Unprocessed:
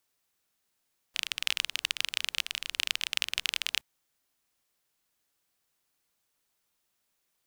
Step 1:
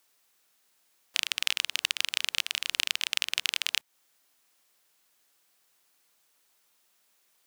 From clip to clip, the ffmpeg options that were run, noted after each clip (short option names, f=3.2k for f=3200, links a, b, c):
-af "highpass=f=360:p=1,acompressor=threshold=-34dB:ratio=2.5,volume=9dB"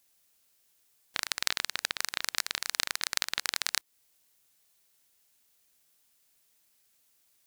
-af "highshelf=f=3.7k:g=8,aeval=exprs='val(0)*sin(2*PI*1200*n/s)':c=same,volume=-3.5dB"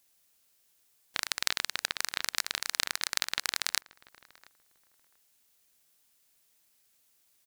-filter_complex "[0:a]asplit=2[a][b];[b]adelay=689,lowpass=f=1.1k:p=1,volume=-18.5dB,asplit=2[c][d];[d]adelay=689,lowpass=f=1.1k:p=1,volume=0.25[e];[a][c][e]amix=inputs=3:normalize=0"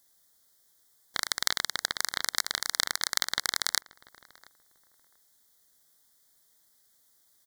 -af "asuperstop=centerf=2600:order=8:qfactor=2.4,volume=3dB"